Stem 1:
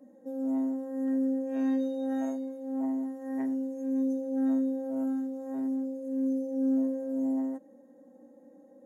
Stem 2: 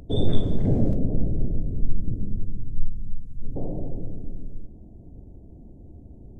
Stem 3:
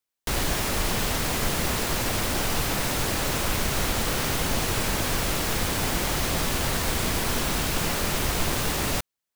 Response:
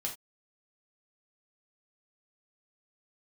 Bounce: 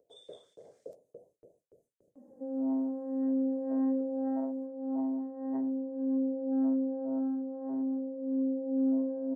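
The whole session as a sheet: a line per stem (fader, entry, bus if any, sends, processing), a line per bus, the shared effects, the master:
-1.5 dB, 2.15 s, no send, low-pass 1.1 kHz 24 dB/octave
-18.5 dB, 0.00 s, send -19.5 dB, FFT filter 130 Hz 0 dB, 270 Hz -9 dB, 490 Hz +5 dB, 800 Hz -10 dB, 2.8 kHz -13 dB, 5.5 kHz 0 dB; LFO high-pass saw up 3.5 Hz 450–2600 Hz
mute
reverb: on, pre-delay 3 ms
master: gate with hold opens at -59 dBFS; treble shelf 2.4 kHz +10 dB

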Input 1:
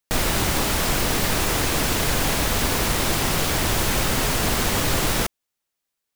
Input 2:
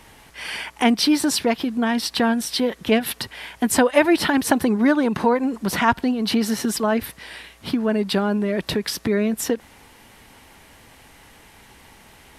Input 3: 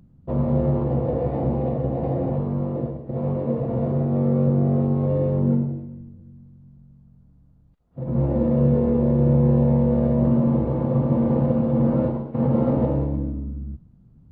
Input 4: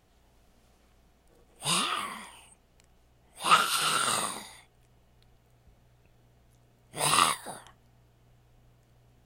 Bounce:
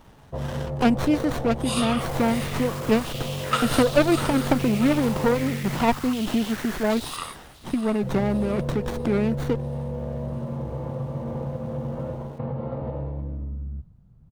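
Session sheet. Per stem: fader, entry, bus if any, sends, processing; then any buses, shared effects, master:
-12.5 dB, 1.90 s, no send, echo send -16.5 dB, saturation -23 dBFS, distortion -10 dB; step-sequenced high-pass 2.6 Hz 870–3700 Hz
-3.0 dB, 0.00 s, no send, no echo send, sliding maximum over 17 samples
+1.0 dB, 0.05 s, no send, no echo send, peaking EQ 270 Hz -11 dB 1.1 oct; compression 6:1, threshold -28 dBFS, peak gain reduction 10.5 dB
+1.5 dB, 0.00 s, no send, echo send -11 dB, random-step tremolo 3.4 Hz, depth 90%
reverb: none
echo: feedback delay 645 ms, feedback 53%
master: none

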